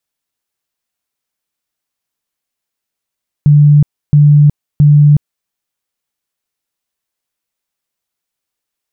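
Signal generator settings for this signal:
tone bursts 147 Hz, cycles 54, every 0.67 s, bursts 3, −2.5 dBFS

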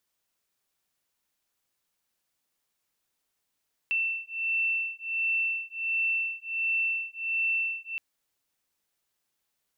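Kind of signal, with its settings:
two tones that beat 2,680 Hz, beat 1.4 Hz, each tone −29.5 dBFS 4.07 s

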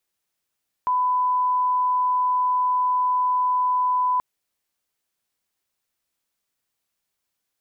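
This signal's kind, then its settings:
line-up tone −18 dBFS 3.33 s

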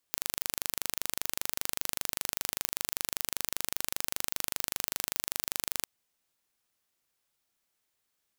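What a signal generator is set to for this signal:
impulse train 25.1 per second, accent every 0, −3 dBFS 5.73 s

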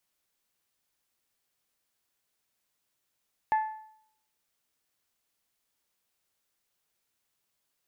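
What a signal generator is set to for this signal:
struck metal bell, lowest mode 870 Hz, decay 0.67 s, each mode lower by 12 dB, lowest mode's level −20 dB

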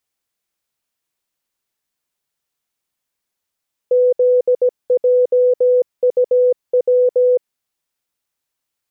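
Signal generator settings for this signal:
Morse code "ZJUW" 17 words per minute 498 Hz −9.5 dBFS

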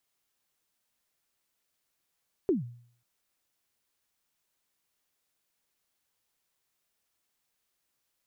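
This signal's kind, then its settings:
synth kick length 0.54 s, from 420 Hz, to 120 Hz, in 143 ms, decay 0.56 s, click off, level −19.5 dB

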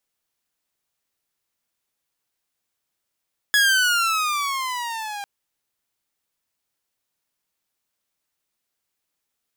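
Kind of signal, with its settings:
pitch glide with a swell saw, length 1.70 s, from 1,690 Hz, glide −13 semitones, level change −16 dB, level −11 dB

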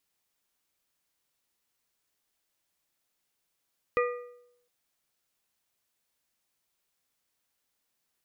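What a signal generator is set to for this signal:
struck metal plate, length 0.71 s, lowest mode 487 Hz, modes 4, decay 0.78 s, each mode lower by 4 dB, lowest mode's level −22 dB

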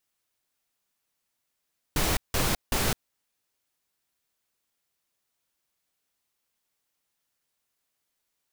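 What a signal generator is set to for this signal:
noise bursts pink, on 0.21 s, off 0.17 s, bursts 3, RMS −25 dBFS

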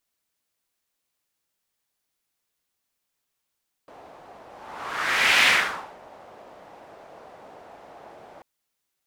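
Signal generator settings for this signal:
pass-by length 4.54 s, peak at 0:01.56, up 1.06 s, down 0.57 s, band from 690 Hz, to 2,300 Hz, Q 2.1, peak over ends 29 dB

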